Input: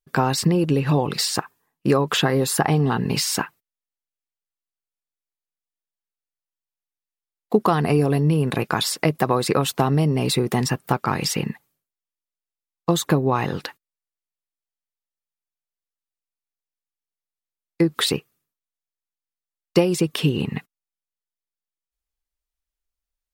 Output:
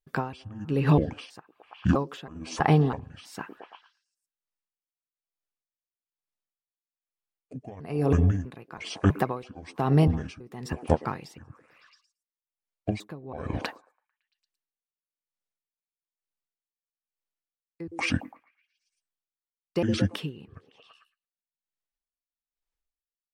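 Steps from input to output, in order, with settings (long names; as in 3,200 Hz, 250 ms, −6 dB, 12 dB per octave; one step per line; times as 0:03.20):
pitch shifter gated in a rhythm −8.5 semitones, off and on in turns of 325 ms
high-shelf EQ 4,500 Hz −7.5 dB
on a send: echo through a band-pass that steps 112 ms, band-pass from 350 Hz, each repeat 0.7 octaves, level −12 dB
on the sum: tremolo with a sine in dB 1.1 Hz, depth 23 dB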